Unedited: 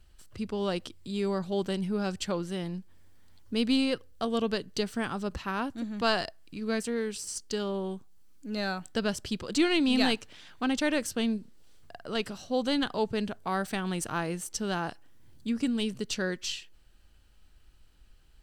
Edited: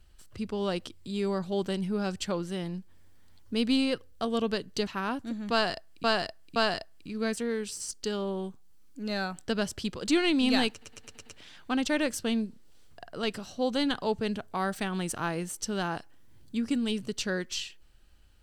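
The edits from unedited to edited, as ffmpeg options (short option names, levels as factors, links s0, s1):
-filter_complex "[0:a]asplit=9[s0][s1][s2][s3][s4][s5][s6][s7][s8];[s0]atrim=end=4.872[s9];[s1]atrim=start=5.378:end=6.552[s10];[s2]atrim=start=6.028:end=6.552[s11];[s3]atrim=start=6.028:end=10.292[s12];[s4]atrim=start=10.178:end=10.292[s13];[s5]atrim=start=10.178:end=10.292[s14];[s6]atrim=start=10.178:end=10.292[s15];[s7]atrim=start=10.178:end=10.292[s16];[s8]atrim=start=10.178[s17];[s9][s10]acrossfade=d=0.004:c1=hsin:c2=hsin[s18];[s18][s11]acrossfade=d=0.004:c1=hsin:c2=hsin[s19];[s19][s12]acrossfade=d=0.004:c1=hsin:c2=hsin[s20];[s20][s13]acrossfade=d=0.004:c1=hsin:c2=hsin[s21];[s21][s14]acrossfade=d=0.004:c1=hsin:c2=hsin[s22];[s22][s15]acrossfade=d=0.004:c1=hsin:c2=hsin[s23];[s23][s16]acrossfade=d=0.004:c1=hsin:c2=hsin[s24];[s24][s17]acrossfade=d=0.004:c1=hsin:c2=hsin"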